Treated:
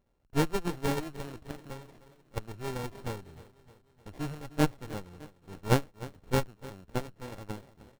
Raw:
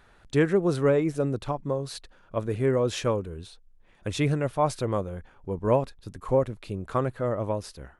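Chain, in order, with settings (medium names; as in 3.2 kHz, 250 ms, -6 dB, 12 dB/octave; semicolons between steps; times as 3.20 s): sorted samples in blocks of 32 samples; Chebyshev shaper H 3 -11 dB, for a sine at -9.5 dBFS; on a send: feedback delay 305 ms, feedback 53%, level -17 dB; on the sum: sliding maximum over 33 samples; trim +2 dB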